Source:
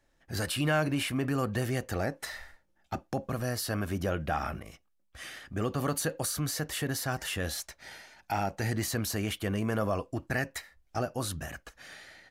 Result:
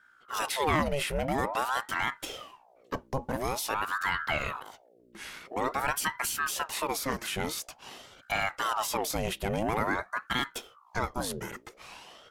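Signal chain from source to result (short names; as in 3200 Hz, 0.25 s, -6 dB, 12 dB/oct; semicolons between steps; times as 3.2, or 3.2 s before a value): hum 60 Hz, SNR 29 dB; ring modulator with a swept carrier 890 Hz, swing 70%, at 0.48 Hz; gain +3.5 dB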